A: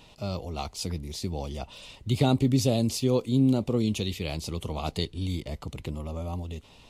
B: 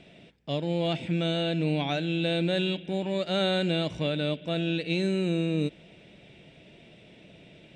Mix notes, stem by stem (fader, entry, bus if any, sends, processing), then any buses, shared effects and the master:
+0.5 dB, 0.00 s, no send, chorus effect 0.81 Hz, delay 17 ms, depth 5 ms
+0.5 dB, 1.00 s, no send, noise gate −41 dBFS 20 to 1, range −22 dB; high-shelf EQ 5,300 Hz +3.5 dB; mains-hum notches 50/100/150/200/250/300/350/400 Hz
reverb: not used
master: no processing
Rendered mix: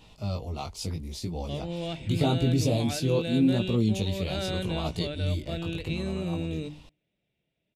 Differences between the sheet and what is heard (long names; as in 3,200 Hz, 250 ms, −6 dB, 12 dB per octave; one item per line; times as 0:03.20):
stem B +0.5 dB → −7.0 dB
master: extra low-shelf EQ 120 Hz +6.5 dB